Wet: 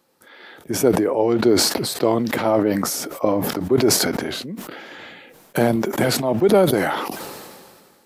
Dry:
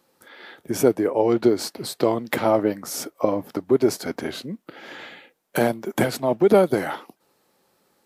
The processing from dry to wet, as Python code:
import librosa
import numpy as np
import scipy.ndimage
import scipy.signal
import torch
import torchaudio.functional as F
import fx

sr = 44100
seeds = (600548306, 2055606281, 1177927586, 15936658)

y = fx.low_shelf(x, sr, hz=190.0, db=7.5, at=(4.98, 5.76))
y = fx.sustainer(y, sr, db_per_s=31.0)